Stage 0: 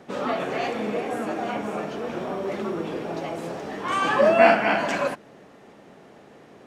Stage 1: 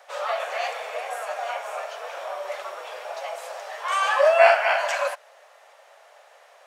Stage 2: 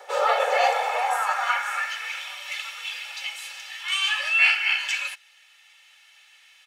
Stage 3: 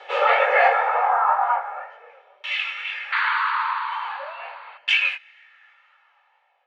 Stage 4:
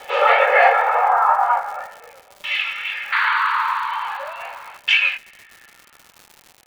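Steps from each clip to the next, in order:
elliptic high-pass 570 Hz, stop band 50 dB; high shelf 6100 Hz +7 dB; gain +1 dB
comb 2.3 ms, depth 75%; vocal rider within 4 dB 2 s; high-pass sweep 370 Hz -> 2700 Hz, 0.16–2.29
chorus 2 Hz, delay 18.5 ms, depth 7.3 ms; painted sound noise, 3.12–4.78, 870–4700 Hz -27 dBFS; LFO low-pass saw down 0.41 Hz 390–3100 Hz; gain +4.5 dB
crackle 210/s -35 dBFS; gain +3.5 dB

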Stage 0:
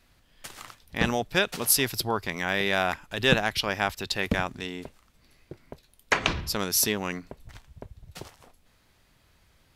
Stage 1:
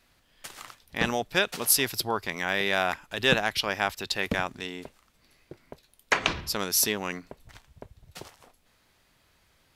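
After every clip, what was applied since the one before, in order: low shelf 200 Hz -7 dB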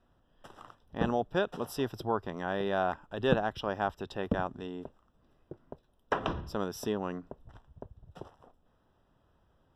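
running mean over 20 samples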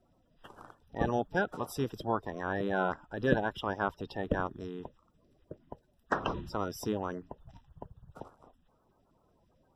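bin magnitudes rounded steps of 30 dB

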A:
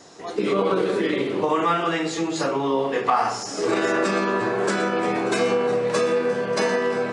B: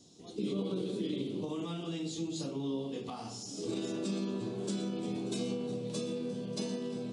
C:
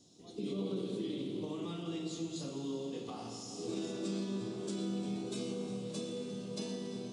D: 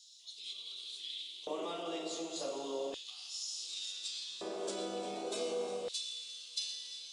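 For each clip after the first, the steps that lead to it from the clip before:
EQ curve 240 Hz 0 dB, 470 Hz -12 dB, 1800 Hz -27 dB, 3400 Hz -3 dB, 5000 Hz -6 dB, 10000 Hz -3 dB; gain -6 dB
Schroeder reverb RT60 3.8 s, combs from 27 ms, DRR 4.5 dB; gain -4 dB
LFO high-pass square 0.34 Hz 600–3700 Hz; gain +4 dB

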